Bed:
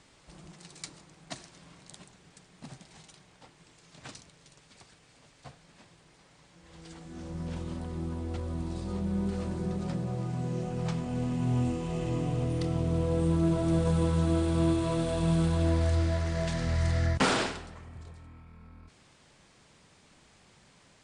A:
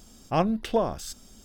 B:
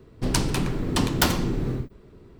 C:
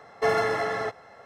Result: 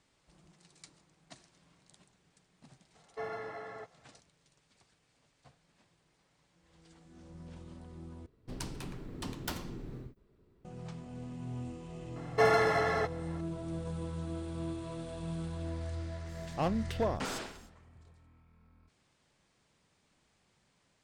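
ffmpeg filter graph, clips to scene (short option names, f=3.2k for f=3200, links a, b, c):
-filter_complex "[3:a]asplit=2[a][b];[0:a]volume=-12.5dB[c];[a]highshelf=f=4.5k:g=-12[d];[1:a]asoftclip=type=hard:threshold=-18dB[e];[c]asplit=2[f][g];[f]atrim=end=8.264[h];[2:a]atrim=end=2.39,asetpts=PTS-STARTPTS,volume=-17.5dB[i];[g]atrim=start=10.646[j];[d]atrim=end=1.25,asetpts=PTS-STARTPTS,volume=-16dB,afade=t=in:d=0.004:c=hsin,afade=t=out:st=1.246:d=0.004:c=hsin,adelay=2950[k];[b]atrim=end=1.25,asetpts=PTS-STARTPTS,volume=-2dB,afade=t=in:d=0.004:c=hsin,afade=t=out:st=1.246:d=0.004:c=hsin,adelay=12160[l];[e]atrim=end=1.44,asetpts=PTS-STARTPTS,volume=-7dB,afade=t=in:d=0.05,afade=t=out:st=1.39:d=0.05,adelay=16260[m];[h][i]acrossfade=d=0.004:c1=hsin:c2=hsin[n];[n][j]acrossfade=d=0.004:c1=hsin:c2=hsin[o];[o][k][l][m]amix=inputs=4:normalize=0"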